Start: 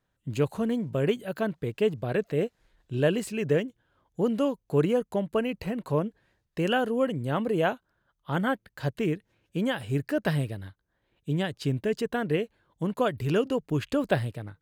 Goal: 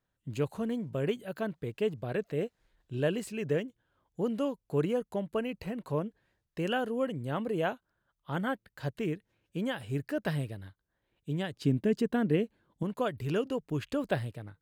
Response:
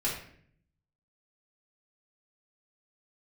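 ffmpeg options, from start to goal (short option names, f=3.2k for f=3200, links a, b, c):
-filter_complex "[0:a]asettb=1/sr,asplit=3[a][b][c];[a]atrim=end=11.564[d];[b]atrim=start=11.56:end=12.83,asetpts=PTS-STARTPTS,afade=t=in:d=0.004:c=qsin,afade=t=out:st=1.266:d=0.004:c=qsin,equalizer=f=230:t=o:w=1.4:g=9.5[e];[c]atrim=start=12.826[f];[d][e]acrossfade=d=0.004:c1=hsin:c2=qsin[g];[g][f]acrossfade=d=0.004:c1=qsin:c2=hsin,volume=-5.5dB"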